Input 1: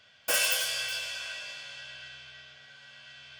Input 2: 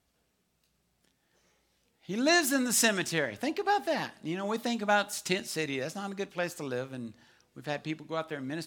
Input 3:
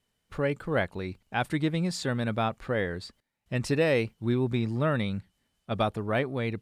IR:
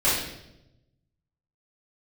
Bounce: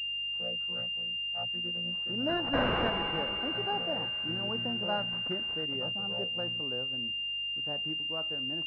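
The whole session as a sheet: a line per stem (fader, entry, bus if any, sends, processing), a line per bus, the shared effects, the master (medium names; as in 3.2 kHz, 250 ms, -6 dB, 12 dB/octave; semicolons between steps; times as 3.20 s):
+3.0 dB, 2.25 s, no send, none
-6.0 dB, 0.00 s, no send, local Wiener filter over 9 samples
-3.0 dB, 0.00 s, no send, vocoder on a held chord bare fifth, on A#2; high-pass 930 Hz 6 dB/octave; chorus voices 4, 0.75 Hz, delay 16 ms, depth 1 ms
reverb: none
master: hum 50 Hz, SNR 30 dB; class-D stage that switches slowly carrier 2.8 kHz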